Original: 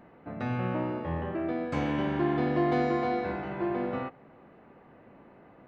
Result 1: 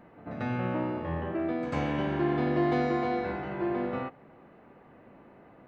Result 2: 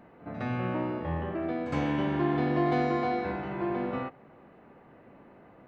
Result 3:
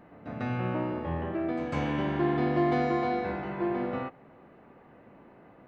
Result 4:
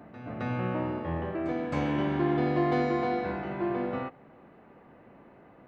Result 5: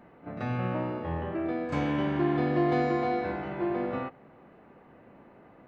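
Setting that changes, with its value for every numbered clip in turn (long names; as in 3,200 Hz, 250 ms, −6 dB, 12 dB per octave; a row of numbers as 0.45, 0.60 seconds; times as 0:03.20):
echo ahead of the sound, delay time: 94, 62, 149, 266, 34 milliseconds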